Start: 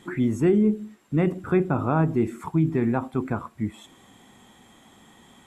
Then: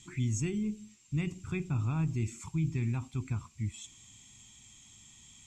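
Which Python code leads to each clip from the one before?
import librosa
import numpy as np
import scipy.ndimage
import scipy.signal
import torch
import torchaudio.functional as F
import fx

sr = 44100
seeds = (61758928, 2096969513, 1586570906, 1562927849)

y = fx.curve_eq(x, sr, hz=(120.0, 180.0, 370.0, 550.0, 1000.0, 1700.0, 2400.0, 3600.0, 7000.0, 11000.0), db=(0, -11, -19, -28, -16, -18, 0, -2, 11, -12))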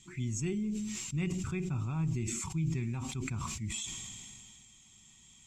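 y = x + 0.31 * np.pad(x, (int(5.3 * sr / 1000.0), 0))[:len(x)]
y = fx.sustainer(y, sr, db_per_s=23.0)
y = y * 10.0 ** (-3.5 / 20.0)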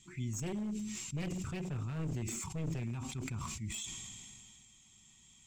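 y = np.minimum(x, 2.0 * 10.0 ** (-31.5 / 20.0) - x)
y = y * 10.0 ** (-3.0 / 20.0)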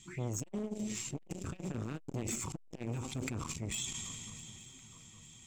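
y = fx.echo_swing(x, sr, ms=864, ratio=3, feedback_pct=42, wet_db=-19.0)
y = fx.transformer_sat(y, sr, knee_hz=500.0)
y = y * 10.0 ** (4.5 / 20.0)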